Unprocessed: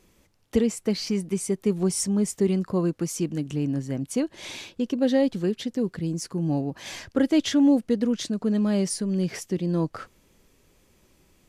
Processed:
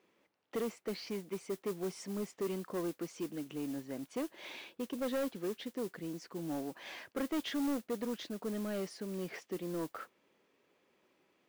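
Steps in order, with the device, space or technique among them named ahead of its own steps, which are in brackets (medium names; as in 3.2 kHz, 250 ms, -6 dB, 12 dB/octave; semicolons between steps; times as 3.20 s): carbon microphone (band-pass 330–3000 Hz; saturation -24.5 dBFS, distortion -11 dB; modulation noise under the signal 17 dB); trim -6 dB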